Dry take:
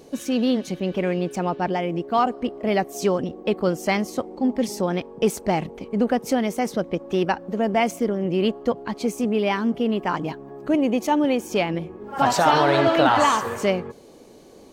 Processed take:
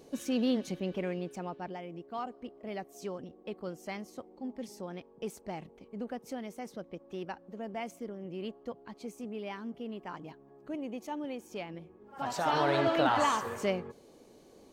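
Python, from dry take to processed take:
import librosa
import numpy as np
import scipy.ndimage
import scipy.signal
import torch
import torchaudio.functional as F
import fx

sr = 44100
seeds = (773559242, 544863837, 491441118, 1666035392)

y = fx.gain(x, sr, db=fx.line((0.68, -8.0), (1.83, -18.0), (12.18, -18.0), (12.63, -9.5)))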